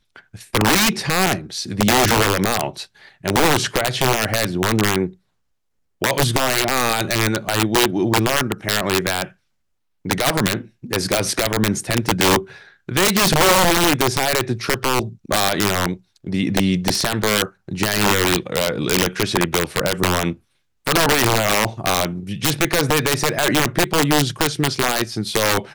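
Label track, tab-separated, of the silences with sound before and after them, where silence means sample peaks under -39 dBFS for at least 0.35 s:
5.130000	6.020000	silence
9.320000	10.050000	silence
20.350000	20.860000	silence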